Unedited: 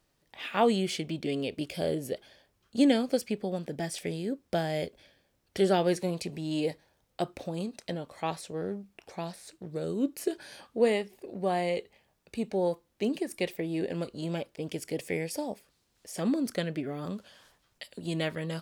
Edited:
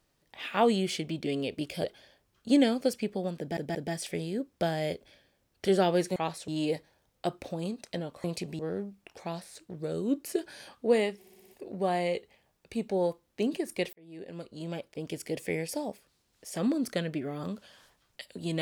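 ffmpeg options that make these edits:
-filter_complex "[0:a]asplit=14[a][b][c][d][e][f][g][h][i][j][k][l][m][n];[a]atrim=end=1.842[o];[b]atrim=start=2.118:end=3.852[p];[c]atrim=start=3.668:end=3.852[q];[d]atrim=start=3.668:end=6.082[r];[e]atrim=start=8.188:end=8.512[s];[f]atrim=start=6.428:end=8.192[t];[g]atrim=start=6.078:end=6.432[u];[h]atrim=start=8.508:end=11.162[v];[i]atrim=start=11.098:end=11.162[w];[j]atrim=start=11.098:end=11.162[x];[k]atrim=start=11.098:end=11.162[y];[l]atrim=start=11.098:end=11.162[z];[m]atrim=start=11.098:end=13.55,asetpts=PTS-STARTPTS,afade=t=out:st=2.448:d=0.004:c=hsin[aa];[n]atrim=start=13.55,asetpts=PTS-STARTPTS,afade=t=in:d=1.72:c=qsin[ab];[o][p]acrossfade=d=0.004:c1=hsin:c2=hsin[ac];[ac][q]acrossfade=d=0.004:c1=hsin:c2=hsin[ad];[ad][r]acrossfade=d=0.004:c1=hsin:c2=hsin[ae];[ae][s]acrossfade=d=0.004:c1=hsin:c2=hsin[af];[af][t]acrossfade=d=0.004:c1=hsin:c2=hsin[ag];[ag][u]acrossfade=d=0.004:c1=hsin:c2=hsin[ah];[ah][v]acrossfade=d=0.004:c1=hsin:c2=hsin[ai];[ai][w]acrossfade=d=0.004:c1=hsin:c2=hsin[aj];[aj][x]acrossfade=d=0.004:c1=hsin:c2=hsin[ak];[ak][y]acrossfade=d=0.004:c1=hsin:c2=hsin[al];[al][z]acrossfade=d=0.004:c1=hsin:c2=hsin[am];[aa][ab]concat=n=2:v=0:a=1[an];[am][an]acrossfade=d=0.004:c1=hsin:c2=hsin"

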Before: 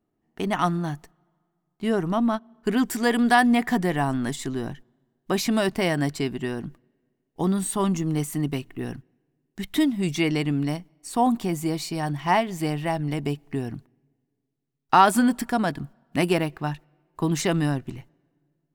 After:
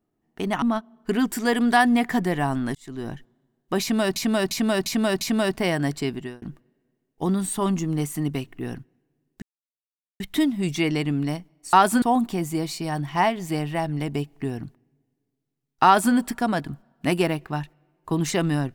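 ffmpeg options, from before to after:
-filter_complex "[0:a]asplit=11[a][b][c][d][e][f][g][h][i][j][k];[a]atrim=end=0.622[l];[b]atrim=start=2.198:end=4.33,asetpts=PTS-STARTPTS,afade=t=out:st=2.128:d=0.004:c=hsin[m];[c]atrim=start=4.33:end=5.742,asetpts=PTS-STARTPTS,afade=t=in:d=0.37[n];[d]atrim=start=5.388:end=5.742[o];[e]atrim=start=5.388:end=5.742[p];[f]atrim=start=5.388:end=5.742[q];[g]atrim=start=5.388:end=6.6,asetpts=PTS-STARTPTS,afade=t=out:st=0.942:d=0.27[r];[h]atrim=start=6.6:end=9.6,asetpts=PTS-STARTPTS,afade=t=in:d=0.004:c=hsin,afade=t=out:st=2.996:d=0.004:c=hsin,apad=pad_dur=0.78[s];[i]atrim=start=9.6:end=11.132,asetpts=PTS-STARTPTS,afade=t=in:d=0.004:c=hsin[t];[j]atrim=start=14.958:end=15.252[u];[k]atrim=start=11.128[v];[m][n]concat=n=2:v=0:a=1[w];[l][w]acrossfade=d=0.004:c1=hsin:c2=hsin[x];[x][o]acrossfade=d=0.004:c1=hsin:c2=hsin[y];[y][p]acrossfade=d=0.004:c1=hsin:c2=hsin[z];[z][q]acrossfade=d=0.004:c1=hsin:c2=hsin[aa];[r][s][t]concat=n=3:v=0:a=1[ab];[aa][ab]acrossfade=d=0.004:c1=hsin:c2=hsin[ac];[ac][u]acrossfade=d=0.004:c1=hsin:c2=hsin[ad];[ad][v]acrossfade=d=0.004:c1=hsin:c2=hsin"

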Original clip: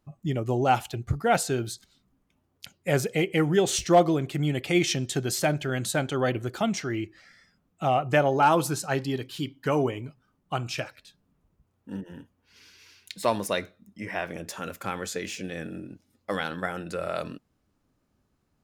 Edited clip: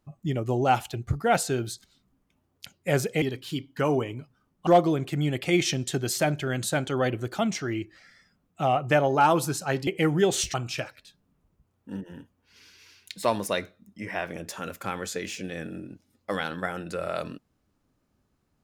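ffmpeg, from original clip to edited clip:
-filter_complex "[0:a]asplit=5[a][b][c][d][e];[a]atrim=end=3.222[f];[b]atrim=start=9.088:end=10.542[g];[c]atrim=start=3.888:end=9.092[h];[d]atrim=start=3.218:end=3.892[i];[e]atrim=start=10.538[j];[f][g]acrossfade=d=0.004:c1=hsin:c2=hsin[k];[k][h]acrossfade=d=0.004:c1=hsin:c2=hsin[l];[l][i]acrossfade=d=0.004:c1=hsin:c2=hsin[m];[m][j]acrossfade=d=0.004:c1=hsin:c2=hsin"

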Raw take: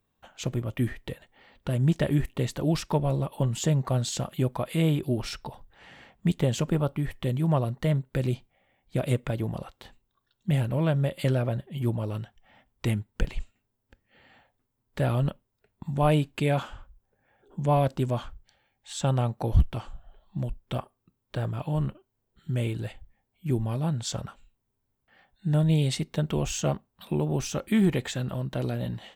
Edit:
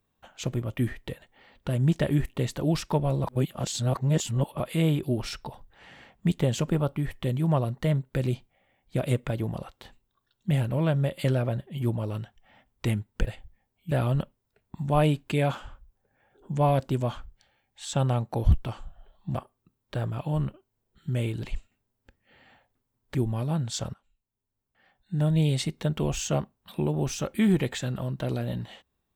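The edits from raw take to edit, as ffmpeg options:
-filter_complex "[0:a]asplit=9[a][b][c][d][e][f][g][h][i];[a]atrim=end=3.242[j];[b]atrim=start=3.238:end=4.602,asetpts=PTS-STARTPTS,areverse[k];[c]atrim=start=4.598:end=13.272[l];[d]atrim=start=22.838:end=23.482[m];[e]atrim=start=14.988:end=20.432[n];[f]atrim=start=20.758:end=22.842[o];[g]atrim=start=13.268:end=14.992[p];[h]atrim=start=23.478:end=24.27,asetpts=PTS-STARTPTS,afade=t=out:st=0.788:d=0.004:c=hsin:silence=0.0944061[q];[i]atrim=start=24.27,asetpts=PTS-STARTPTS,afade=t=in:d=1.54:silence=0.0944061[r];[j][k]acrossfade=d=0.004:c1=hsin:c2=hsin[s];[s][l]acrossfade=d=0.004:c1=hsin:c2=hsin[t];[t][m]acrossfade=d=0.004:c1=hsin:c2=hsin[u];[u][n]acrossfade=d=0.004:c1=hsin:c2=hsin[v];[v][o]acrossfade=d=0.004:c1=hsin:c2=hsin[w];[w][p]acrossfade=d=0.004:c1=hsin:c2=hsin[x];[q][r]concat=n=2:v=0:a=1[y];[x][y]acrossfade=d=0.004:c1=hsin:c2=hsin"

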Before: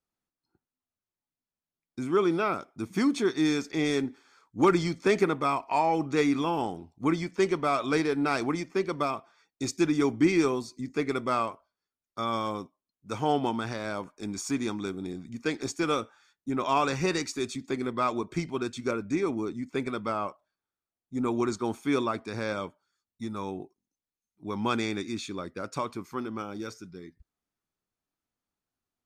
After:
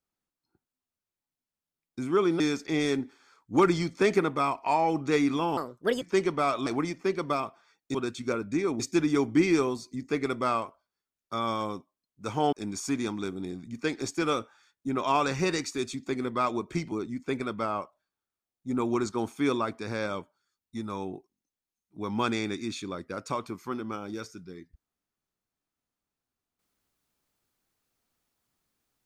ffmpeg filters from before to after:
-filter_complex "[0:a]asplit=9[a][b][c][d][e][f][g][h][i];[a]atrim=end=2.402[j];[b]atrim=start=3.448:end=6.624[k];[c]atrim=start=6.62:end=7.27,asetpts=PTS-STARTPTS,asetrate=64386,aresample=44100[l];[d]atrim=start=7.266:end=7.922[m];[e]atrim=start=8.368:end=9.652[n];[f]atrim=start=18.528:end=19.382[o];[g]atrim=start=9.648:end=13.382[p];[h]atrim=start=14.138:end=18.532[q];[i]atrim=start=19.378[r];[j][k]acrossfade=d=0.004:c1=hsin:c2=hsin[s];[s][l]acrossfade=d=0.004:c1=hsin:c2=hsin[t];[t][m]acrossfade=d=0.004:c1=hsin:c2=hsin[u];[u][n]acrossfade=d=0.004:c1=hsin:c2=hsin[v];[v][o]acrossfade=d=0.004:c1=hsin:c2=hsin[w];[w][p]acrossfade=d=0.004:c1=hsin:c2=hsin[x];[x][q]acrossfade=d=0.004:c1=hsin:c2=hsin[y];[y][r]acrossfade=d=0.004:c1=hsin:c2=hsin"

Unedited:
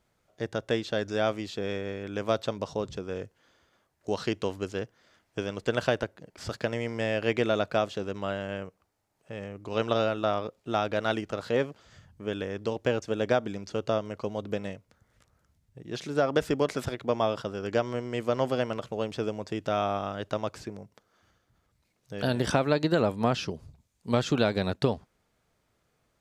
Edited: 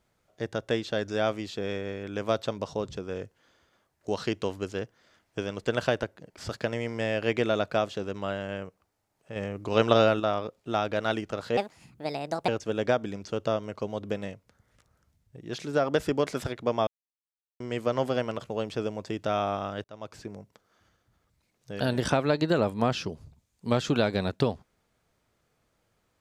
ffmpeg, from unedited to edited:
-filter_complex "[0:a]asplit=8[a][b][c][d][e][f][g][h];[a]atrim=end=9.362[i];[b]atrim=start=9.358:end=10.202,asetpts=PTS-STARTPTS,volume=5.5dB[j];[c]atrim=start=10.198:end=11.574[k];[d]atrim=start=11.57:end=12.9,asetpts=PTS-STARTPTS,asetrate=64386,aresample=44100,atrim=end_sample=40173,asetpts=PTS-STARTPTS[l];[e]atrim=start=12.896:end=17.29,asetpts=PTS-STARTPTS,afade=t=out:st=4.39:d=0.004:c=hsin[m];[f]atrim=start=17.29:end=18.02,asetpts=PTS-STARTPTS,volume=0[n];[g]atrim=start=18.02:end=20.26,asetpts=PTS-STARTPTS,afade=t=in:d=0.004:c=hsin,afade=t=out:st=2.236:d=0.004:c=hsin[o];[h]atrim=start=20.26,asetpts=PTS-STARTPTS,afade=t=in:d=0.5[p];[i][j]acrossfade=d=0.004:c1=hsin:c2=hsin[q];[q][k]acrossfade=d=0.004:c1=hsin:c2=hsin[r];[r][l]acrossfade=d=0.004:c1=hsin:c2=hsin[s];[m][n][o][p]concat=n=4:v=0:a=1[t];[s][t]acrossfade=d=0.004:c1=hsin:c2=hsin"

